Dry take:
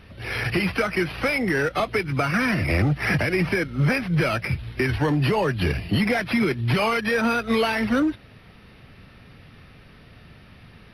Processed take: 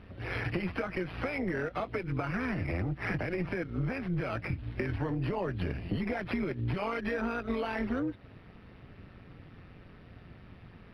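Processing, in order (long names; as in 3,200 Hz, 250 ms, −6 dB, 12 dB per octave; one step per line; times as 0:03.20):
low-pass filter 1,400 Hz 6 dB per octave
downward compressor, threshold −27 dBFS, peak gain reduction 10 dB
amplitude modulation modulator 180 Hz, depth 50%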